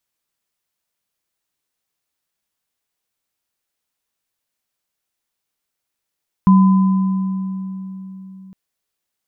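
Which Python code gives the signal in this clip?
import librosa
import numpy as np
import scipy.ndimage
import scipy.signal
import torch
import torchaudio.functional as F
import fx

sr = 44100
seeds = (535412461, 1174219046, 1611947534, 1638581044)

y = fx.additive_free(sr, length_s=2.06, hz=190.0, level_db=-6.0, upper_db=(-11,), decay_s=3.98, upper_decays_s=(2.34,), upper_hz=(1010.0,))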